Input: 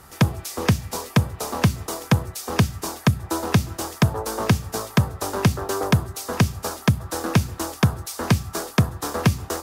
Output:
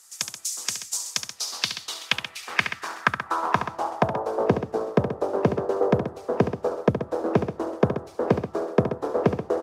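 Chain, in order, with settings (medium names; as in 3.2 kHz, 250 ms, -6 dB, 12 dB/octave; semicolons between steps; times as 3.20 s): band-pass sweep 7.1 kHz -> 480 Hz, 0.97–4.52 s; harmonic-percussive split percussive +7 dB; loudspeakers at several distances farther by 24 m -9 dB, 45 m -11 dB; trim +3 dB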